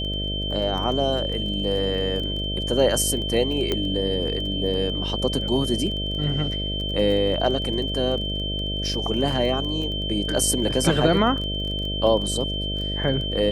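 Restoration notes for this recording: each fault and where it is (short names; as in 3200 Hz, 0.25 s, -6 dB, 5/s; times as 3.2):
buzz 50 Hz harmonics 13 -29 dBFS
crackle 17/s -30 dBFS
tone 3100 Hz -28 dBFS
3.72 pop -10 dBFS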